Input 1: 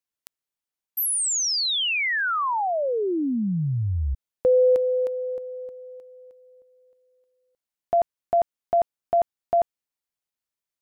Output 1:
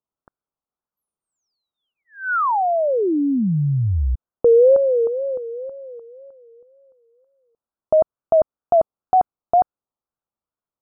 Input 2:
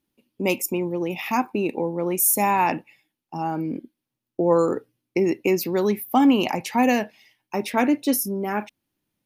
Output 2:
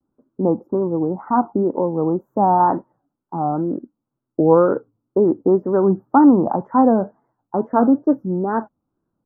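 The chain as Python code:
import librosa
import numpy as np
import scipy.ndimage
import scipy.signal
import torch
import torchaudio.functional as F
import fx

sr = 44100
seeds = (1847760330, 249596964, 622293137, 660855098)

y = scipy.signal.sosfilt(scipy.signal.cheby2(8, 60, 2100.0, 'lowpass', fs=sr, output='sos'), x)
y = fx.wow_flutter(y, sr, seeds[0], rate_hz=2.1, depth_cents=150.0)
y = y * librosa.db_to_amplitude(5.5)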